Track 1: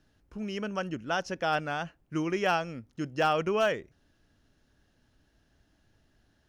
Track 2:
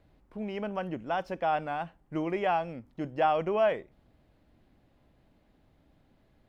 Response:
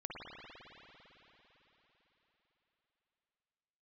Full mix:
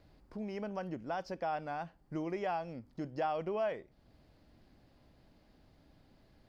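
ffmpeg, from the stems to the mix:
-filter_complex "[0:a]volume=-12dB[a];[1:a]volume=0.5dB,asplit=2[b][c];[c]apad=whole_len=285910[d];[a][d]sidechaincompress=threshold=-29dB:ratio=8:attack=16:release=390[e];[e][b]amix=inputs=2:normalize=0,equalizer=f=4.7k:w=4.1:g=10,acompressor=threshold=-49dB:ratio=1.5"

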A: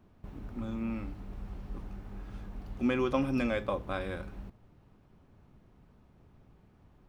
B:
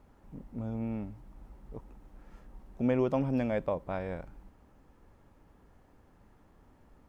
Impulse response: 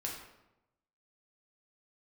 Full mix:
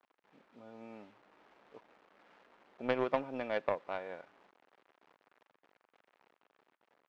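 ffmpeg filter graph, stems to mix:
-filter_complex "[0:a]highpass=f=1.1k:w=0.5412,highpass=f=1.1k:w=1.3066,volume=-8.5dB[a];[1:a]acrusher=bits=8:mix=0:aa=0.000001,volume=0.5dB[b];[a][b]amix=inputs=2:normalize=0,highpass=440,lowpass=2.7k,dynaudnorm=f=230:g=7:m=4.5dB,aeval=exprs='0.2*(cos(1*acos(clip(val(0)/0.2,-1,1)))-cos(1*PI/2))+0.0447*(cos(3*acos(clip(val(0)/0.2,-1,1)))-cos(3*PI/2))':c=same"

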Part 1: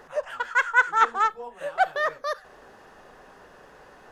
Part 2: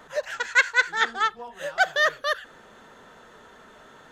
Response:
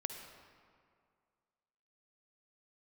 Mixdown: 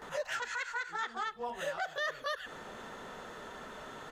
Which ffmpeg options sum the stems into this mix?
-filter_complex "[0:a]acompressor=threshold=-44dB:ratio=1.5,volume=-5dB,asplit=2[a][b];[1:a]bandreject=f=1.6k:w=18,adelay=18,volume=3dB[c];[b]apad=whole_len=182432[d];[c][d]sidechaincompress=threshold=-42dB:ratio=8:attack=6.4:release=269[e];[a][e]amix=inputs=2:normalize=0,alimiter=level_in=2.5dB:limit=-24dB:level=0:latency=1:release=161,volume=-2.5dB"

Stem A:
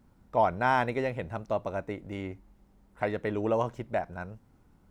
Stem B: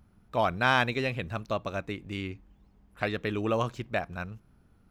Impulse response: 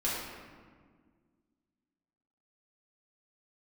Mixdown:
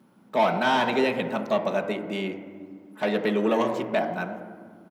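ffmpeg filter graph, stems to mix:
-filter_complex "[0:a]lowpass=f=2.5k:p=1,asoftclip=type=tanh:threshold=-24dB,volume=2.5dB,asplit=2[a][b];[b]volume=-6.5dB[c];[1:a]alimiter=limit=-17.5dB:level=0:latency=1:release=136,highshelf=f=8.1k:g=8.5,adelay=4.5,volume=0.5dB[d];[2:a]atrim=start_sample=2205[e];[c][e]afir=irnorm=-1:irlink=0[f];[a][d][f]amix=inputs=3:normalize=0,highpass=f=170:w=0.5412,highpass=f=170:w=1.3066,equalizer=f=3.2k:w=3:g=4"

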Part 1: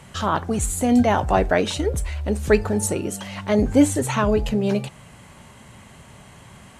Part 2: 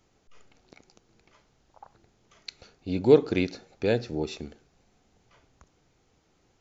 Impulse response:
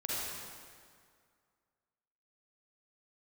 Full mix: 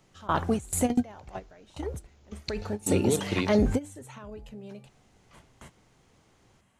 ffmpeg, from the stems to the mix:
-filter_complex "[0:a]bandreject=f=4.5k:w=25,alimiter=limit=-13.5dB:level=0:latency=1:release=14,volume=9.5dB,afade=t=out:st=0.89:d=0.76:silence=0.316228,afade=t=in:st=2.67:d=0.3:silence=0.298538[a];[1:a]acrossover=split=120|3000[b][c][d];[c]acompressor=threshold=-28dB:ratio=6[e];[b][e][d]amix=inputs=3:normalize=0,volume=2.5dB,asplit=3[f][g][h];[f]atrim=end=3.79,asetpts=PTS-STARTPTS,afade=t=out:st=3.786:d=0.004:c=hsin[i];[g]atrim=start=3.79:end=4.85,asetpts=PTS-STARTPTS,volume=0[j];[h]atrim=start=4.85,asetpts=PTS-STARTPTS,afade=t=in:d=0.004:c=hsin[k];[i][j][k]concat=n=3:v=0:a=1,asplit=2[l][m];[m]apad=whole_len=299685[n];[a][n]sidechaingate=range=-21dB:threshold=-55dB:ratio=16:detection=peak[o];[o][l]amix=inputs=2:normalize=0"

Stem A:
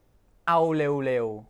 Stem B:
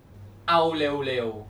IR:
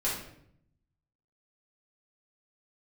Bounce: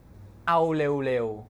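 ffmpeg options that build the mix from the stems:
-filter_complex "[0:a]volume=-0.5dB,asplit=2[a][b];[1:a]equalizer=f=3k:w=4.2:g=-9,acompressor=threshold=-27dB:ratio=6,adelay=0.8,volume=-2.5dB[c];[b]apad=whole_len=65846[d];[c][d]sidechaincompress=threshold=-29dB:ratio=8:attack=16:release=832[e];[a][e]amix=inputs=2:normalize=0,aeval=exprs='val(0)+0.002*(sin(2*PI*60*n/s)+sin(2*PI*2*60*n/s)/2+sin(2*PI*3*60*n/s)/3+sin(2*PI*4*60*n/s)/4+sin(2*PI*5*60*n/s)/5)':c=same"

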